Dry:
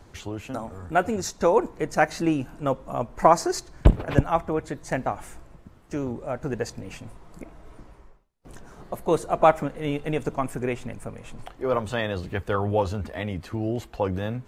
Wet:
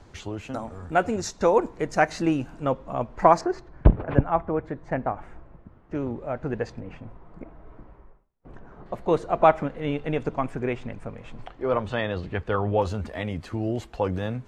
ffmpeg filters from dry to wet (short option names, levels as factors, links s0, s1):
-af "asetnsamples=n=441:p=0,asendcmd='2.65 lowpass f 4500;3.41 lowpass f 1700;5.95 lowpass f 3100;6.8 lowpass f 1700;8.86 lowpass f 3900;12.82 lowpass f 9200',lowpass=7500"